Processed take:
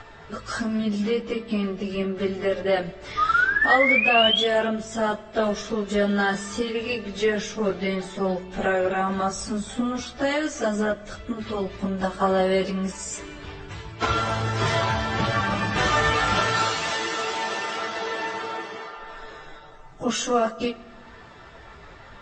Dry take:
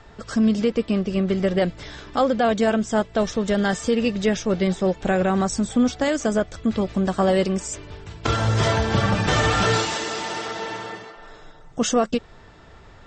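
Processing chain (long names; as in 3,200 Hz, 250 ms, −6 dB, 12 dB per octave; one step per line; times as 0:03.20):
in parallel at +1.5 dB: downward compressor 20 to 1, threshold −32 dBFS, peak gain reduction 18.5 dB
on the sum: sound drawn into the spectrogram rise, 0:01.87–0:02.62, 1,200–3,500 Hz −19 dBFS
tilt shelving filter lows −5 dB, about 710 Hz
time stretch by phase vocoder 1.7×
high-shelf EQ 3,700 Hz −11 dB
on a send at −15.5 dB: convolution reverb RT60 1.4 s, pre-delay 3 ms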